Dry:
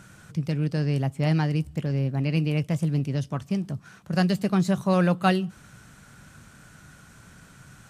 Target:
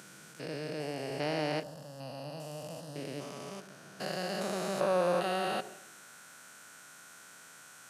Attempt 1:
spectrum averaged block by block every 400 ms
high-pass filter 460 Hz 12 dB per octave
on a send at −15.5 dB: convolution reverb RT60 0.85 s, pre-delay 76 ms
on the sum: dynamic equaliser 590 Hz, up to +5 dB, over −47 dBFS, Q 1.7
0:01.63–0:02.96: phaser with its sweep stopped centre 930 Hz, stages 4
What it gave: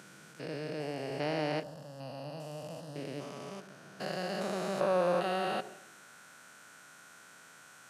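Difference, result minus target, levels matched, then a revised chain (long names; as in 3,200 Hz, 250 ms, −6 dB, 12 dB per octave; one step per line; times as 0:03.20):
8,000 Hz band −4.5 dB
spectrum averaged block by block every 400 ms
high-pass filter 460 Hz 12 dB per octave
high-shelf EQ 5,300 Hz +7 dB
on a send at −15.5 dB: convolution reverb RT60 0.85 s, pre-delay 76 ms
on the sum: dynamic equaliser 590 Hz, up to +5 dB, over −47 dBFS, Q 1.7
0:01.63–0:02.96: phaser with its sweep stopped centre 930 Hz, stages 4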